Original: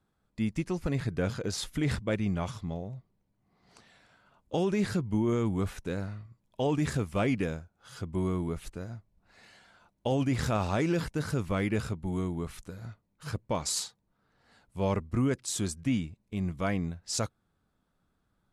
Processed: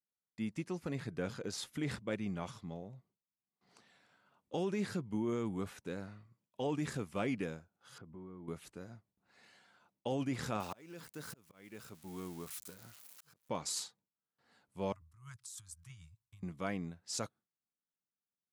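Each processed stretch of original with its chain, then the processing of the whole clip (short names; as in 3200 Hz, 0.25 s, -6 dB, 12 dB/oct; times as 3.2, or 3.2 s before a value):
7.98–8.48 LPF 1600 Hz + compressor, threshold -38 dBFS
10.6–13.49 switching spikes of -33.5 dBFS + low shelf 400 Hz -5 dB + auto swell 0.767 s
14.92–16.43 Chebyshev band-stop 110–1100 Hz, order 3 + bell 2300 Hz -13 dB 2.3 oct + negative-ratio compressor -42 dBFS
whole clip: gate with hold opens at -59 dBFS; HPF 150 Hz 12 dB/oct; notch 640 Hz, Q 17; gain -7 dB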